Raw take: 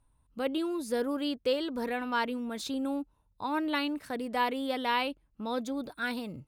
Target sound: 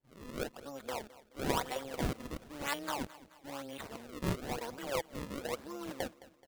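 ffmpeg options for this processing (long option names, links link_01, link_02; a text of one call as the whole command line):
ffmpeg -i in.wav -filter_complex "[0:a]areverse,acrossover=split=460 5500:gain=0.141 1 0.2[link_01][link_02][link_03];[link_01][link_02][link_03]amix=inputs=3:normalize=0,acrusher=samples=33:mix=1:aa=0.000001:lfo=1:lforange=52.8:lforate=1,tremolo=f=140:d=0.667,asplit=2[link_04][link_05];[link_05]aecho=0:1:214|428|642|856:0.119|0.0559|0.0263|0.0123[link_06];[link_04][link_06]amix=inputs=2:normalize=0" out.wav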